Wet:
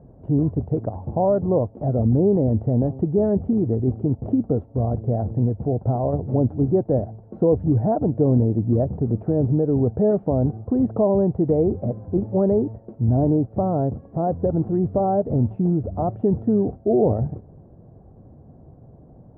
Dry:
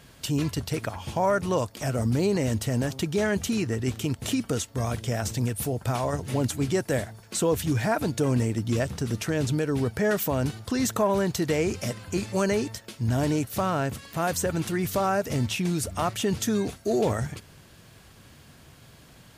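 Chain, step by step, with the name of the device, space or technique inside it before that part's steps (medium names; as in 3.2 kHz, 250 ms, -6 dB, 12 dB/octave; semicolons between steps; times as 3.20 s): under water (low-pass 660 Hz 24 dB/octave; peaking EQ 760 Hz +5 dB 0.21 oct); trim +6.5 dB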